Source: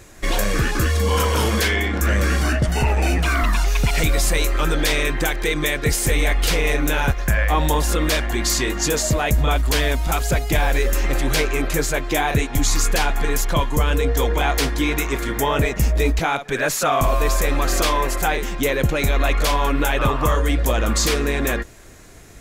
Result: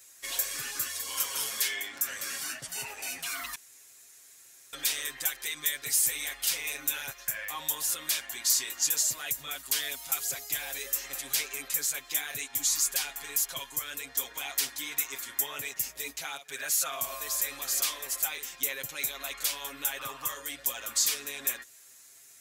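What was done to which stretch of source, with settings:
0:03.55–0:04.73: fill with room tone
whole clip: high-pass filter 100 Hz 6 dB per octave; first-order pre-emphasis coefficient 0.97; comb filter 7.4 ms, depth 81%; level −4.5 dB

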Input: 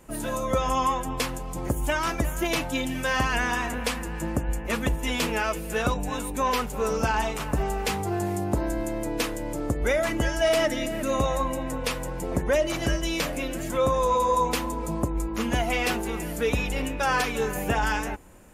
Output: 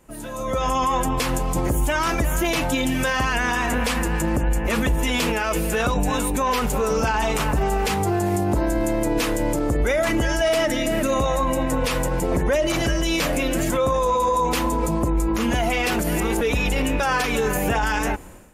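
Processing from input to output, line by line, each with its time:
0:15.99–0:16.41: reverse
whole clip: brickwall limiter −24.5 dBFS; automatic gain control gain up to 14 dB; level −3 dB

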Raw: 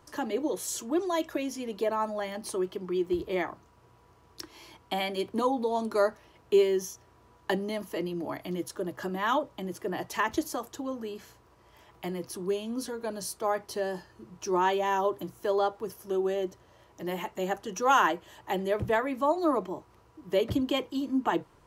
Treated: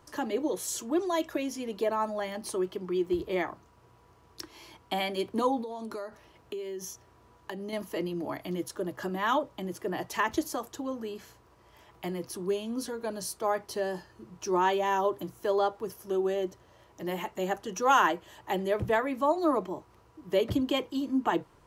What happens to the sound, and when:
0:05.61–0:07.73: downward compressor 10 to 1, threshold −34 dBFS

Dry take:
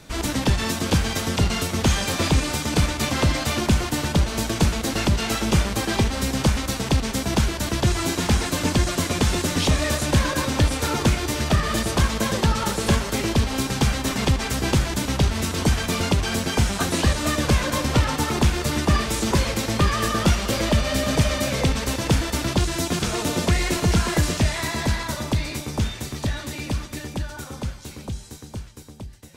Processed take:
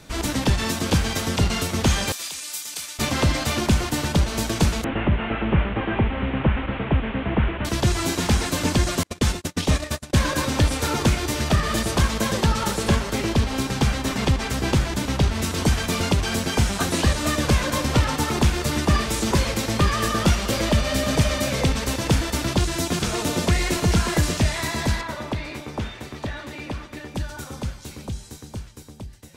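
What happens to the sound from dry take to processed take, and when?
0:02.12–0:02.99: first difference
0:04.84–0:07.65: linear delta modulator 16 kbit/s, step −28.5 dBFS
0:09.03–0:10.23: noise gate −22 dBFS, range −40 dB
0:12.83–0:15.42: high-shelf EQ 5,500 Hz −5 dB
0:25.01–0:27.15: bass and treble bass −7 dB, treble −13 dB

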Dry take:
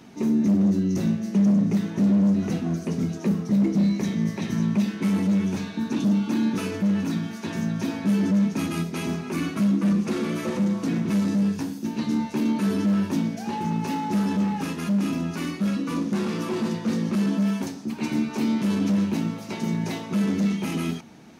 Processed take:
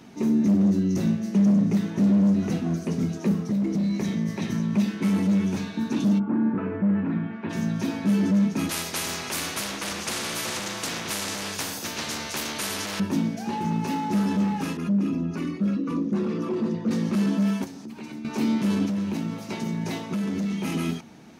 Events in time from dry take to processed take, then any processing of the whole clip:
0:03.36–0:04.74: downward compressor, threshold −21 dBFS
0:06.18–0:07.49: low-pass filter 1,400 Hz → 2,500 Hz 24 dB per octave
0:08.69–0:13.00: every bin compressed towards the loudest bin 4 to 1
0:14.77–0:16.91: spectral envelope exaggerated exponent 1.5
0:17.64–0:18.25: downward compressor 4 to 1, threshold −36 dBFS
0:18.85–0:20.65: downward compressor 4 to 1, threshold −24 dBFS

